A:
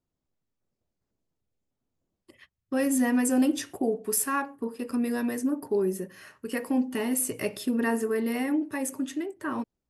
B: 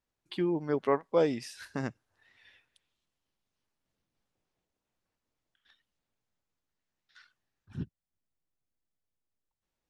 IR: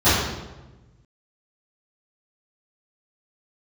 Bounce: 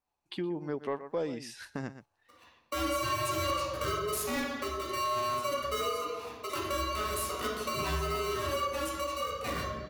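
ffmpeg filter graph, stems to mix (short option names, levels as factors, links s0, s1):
-filter_complex "[0:a]aeval=exprs='val(0)*sgn(sin(2*PI*850*n/s))':c=same,volume=0.562,asplit=2[s0][s1];[s1]volume=0.141[s2];[1:a]volume=1.06,asplit=2[s3][s4];[s4]volume=0.178[s5];[2:a]atrim=start_sample=2205[s6];[s2][s6]afir=irnorm=-1:irlink=0[s7];[s5]aecho=0:1:120:1[s8];[s0][s3][s7][s8]amix=inputs=4:normalize=0,agate=range=0.501:threshold=0.00316:ratio=16:detection=peak,asoftclip=type=tanh:threshold=0.188,acompressor=threshold=0.0178:ratio=2"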